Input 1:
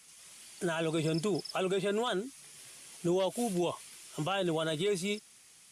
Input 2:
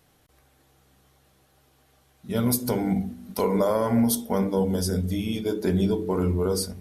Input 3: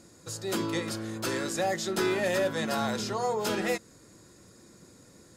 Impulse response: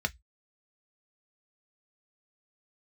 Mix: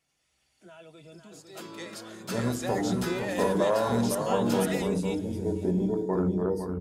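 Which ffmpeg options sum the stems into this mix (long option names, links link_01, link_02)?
-filter_complex "[0:a]volume=-4dB,asplit=3[link_01][link_02][link_03];[link_02]volume=-19.5dB[link_04];[link_03]volume=-20dB[link_05];[1:a]afwtdn=0.0251,volume=-4dB,asplit=4[link_06][link_07][link_08][link_09];[link_07]volume=-11.5dB[link_10];[link_08]volume=-5dB[link_11];[2:a]highpass=frequency=410:poles=1,dynaudnorm=framelen=130:gausssize=11:maxgain=11dB,adelay=1050,volume=-15dB[link_12];[link_09]apad=whole_len=251815[link_13];[link_01][link_13]sidechaingate=range=-33dB:threshold=-43dB:ratio=16:detection=peak[link_14];[3:a]atrim=start_sample=2205[link_15];[link_04][link_10]amix=inputs=2:normalize=0[link_16];[link_16][link_15]afir=irnorm=-1:irlink=0[link_17];[link_05][link_11]amix=inputs=2:normalize=0,aecho=0:1:506:1[link_18];[link_14][link_06][link_12][link_17][link_18]amix=inputs=5:normalize=0"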